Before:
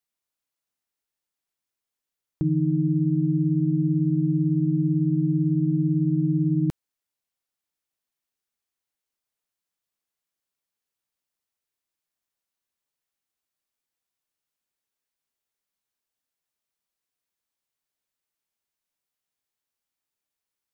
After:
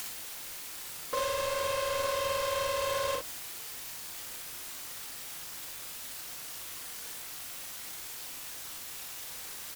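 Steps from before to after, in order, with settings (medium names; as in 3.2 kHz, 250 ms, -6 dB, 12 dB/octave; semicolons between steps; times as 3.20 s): jump at every zero crossing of -28 dBFS; in parallel at +2.5 dB: compression 20:1, threshold -29 dBFS, peak gain reduction 12.5 dB; on the sum: reverb removal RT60 1.3 s; dynamic bell 420 Hz, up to +5 dB, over -49 dBFS, Q 5.9; plain phase-vocoder stretch 1.6×; bass shelf 220 Hz -10.5 dB; bit crusher 5-bit; hum notches 60/120/180 Hz; wide varispeed 3.4×; on a send: early reflections 39 ms -4.5 dB, 59 ms -4.5 dB; on the sum: trim -5 dB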